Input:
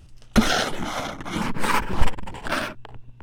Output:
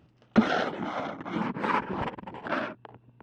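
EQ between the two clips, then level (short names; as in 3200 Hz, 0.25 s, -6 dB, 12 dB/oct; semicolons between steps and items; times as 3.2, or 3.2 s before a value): HPF 190 Hz 12 dB/oct; tape spacing loss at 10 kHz 35 dB; 0.0 dB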